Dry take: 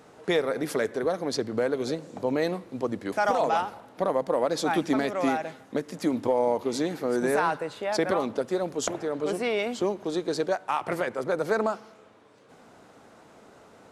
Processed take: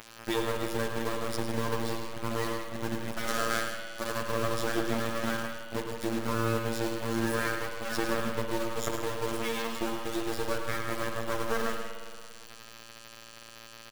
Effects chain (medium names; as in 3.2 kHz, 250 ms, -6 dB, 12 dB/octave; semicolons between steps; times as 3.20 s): comb filter that takes the minimum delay 0.57 ms; 3.28–4.22 s: tone controls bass -6 dB, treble +13 dB; in parallel at -0.5 dB: upward compressor, threshold -29 dBFS; on the sum: robot voice 114 Hz; bit crusher 5-bit; multi-tap echo 106/158 ms -8/-12.5 dB; on a send at -4.5 dB: reverberation RT60 2.1 s, pre-delay 56 ms; on the sum: trim -8.5 dB